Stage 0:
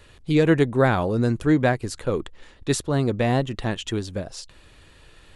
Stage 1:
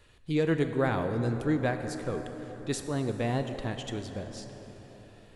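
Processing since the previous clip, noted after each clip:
dense smooth reverb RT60 4.7 s, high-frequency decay 0.5×, DRR 6.5 dB
level −9 dB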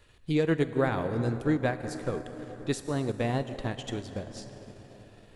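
transient designer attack +3 dB, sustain −5 dB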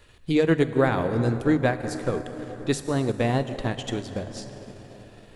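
mains-hum notches 50/100/150 Hz
level +5.5 dB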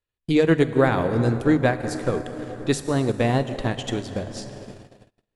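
noise gate −42 dBFS, range −36 dB
level +2.5 dB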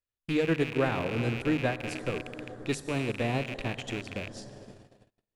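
loose part that buzzes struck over −33 dBFS, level −17 dBFS
level −9 dB

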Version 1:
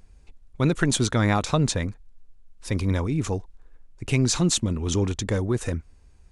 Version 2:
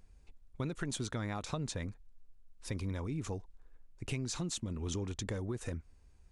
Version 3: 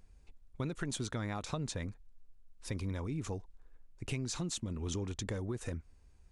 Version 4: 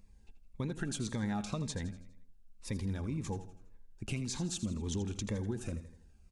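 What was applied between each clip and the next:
downward compressor, threshold −26 dBFS, peak gain reduction 9.5 dB; level −8 dB
no processing that can be heard
hollow resonant body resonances 210/830/1,600/2,700 Hz, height 8 dB, ringing for 90 ms; on a send: repeating echo 82 ms, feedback 48%, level −12.5 dB; on the sum: phaser whose notches keep moving one way falling 1.9 Hz

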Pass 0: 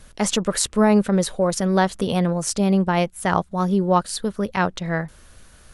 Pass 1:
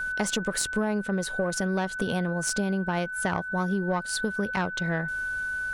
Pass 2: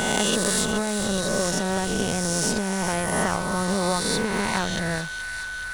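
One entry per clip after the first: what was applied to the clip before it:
one-sided soft clipper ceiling −11 dBFS; steady tone 1,500 Hz −28 dBFS; downward compressor, threshold −24 dBFS, peak gain reduction 11.5 dB
peak hold with a rise ahead of every peak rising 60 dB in 2.41 s; in parallel at −12 dB: comparator with hysteresis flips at −20 dBFS; on the sum: delay with a high-pass on its return 424 ms, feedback 72%, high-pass 1,800 Hz, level −8.5 dB; level −1 dB

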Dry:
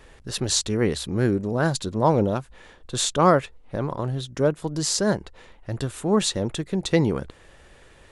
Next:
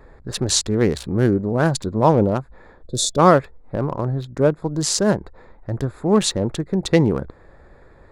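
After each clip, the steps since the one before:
adaptive Wiener filter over 15 samples
gain on a spectral selection 0:02.87–0:03.17, 670–3,400 Hz −19 dB
level +4.5 dB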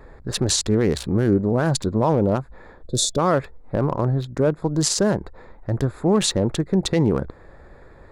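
brickwall limiter −11.5 dBFS, peak gain reduction 10 dB
level +2 dB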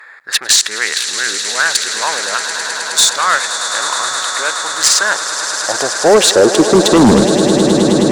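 high-pass filter sweep 1,700 Hz → 130 Hz, 0:04.91–0:07.68
echo that builds up and dies away 105 ms, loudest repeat 8, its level −14 dB
harmonic generator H 5 −7 dB, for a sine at −3.5 dBFS
level +2.5 dB

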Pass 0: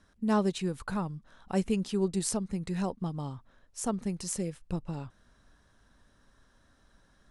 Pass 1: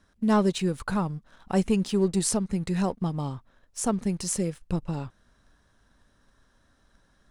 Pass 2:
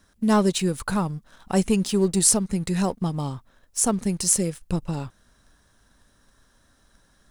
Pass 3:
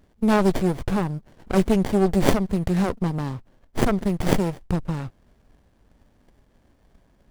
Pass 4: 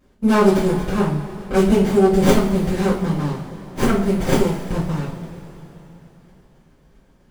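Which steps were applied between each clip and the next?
leveller curve on the samples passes 1; level +2 dB
high-shelf EQ 6,300 Hz +11.5 dB; level +2.5 dB
windowed peak hold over 33 samples; level +3.5 dB
coupled-rooms reverb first 0.38 s, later 3.7 s, from −18 dB, DRR −10 dB; level −6 dB

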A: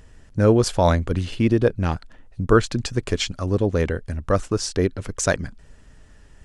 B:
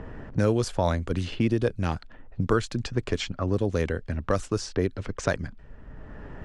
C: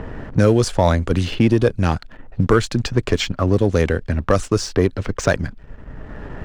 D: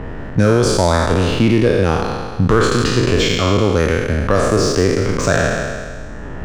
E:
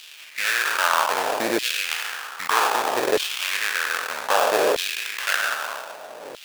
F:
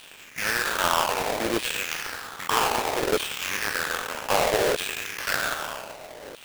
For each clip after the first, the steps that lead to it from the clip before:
low-pass that shuts in the quiet parts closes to 1,200 Hz, open at −16.5 dBFS; multiband upward and downward compressor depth 70%; level −5.5 dB
leveller curve on the samples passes 1; level +5.5 dB
peak hold with a decay on every bin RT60 1.74 s; in parallel at −1 dB: brickwall limiter −6.5 dBFS, peak gain reduction 7.5 dB; on the sum: level −5 dB
sample-rate reduction 2,100 Hz, jitter 20%; auto-filter high-pass saw down 0.63 Hz 510–3,300 Hz; level −4.5 dB
each half-wave held at its own peak; level −8 dB

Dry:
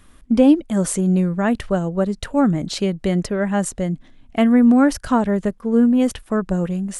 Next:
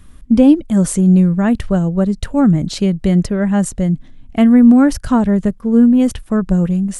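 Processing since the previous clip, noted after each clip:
bass and treble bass +10 dB, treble +2 dB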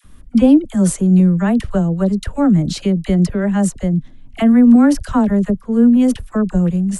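all-pass dispersion lows, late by 46 ms, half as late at 790 Hz
level −1 dB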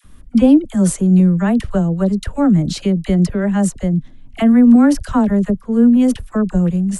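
no processing that can be heard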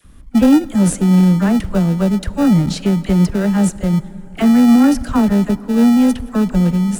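in parallel at −9.5 dB: decimation without filtering 41×
on the sum: harmonic generator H 5 −24 dB, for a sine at 1 dBFS
dense smooth reverb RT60 4.9 s, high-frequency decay 0.45×, DRR 18 dB
level −2.5 dB

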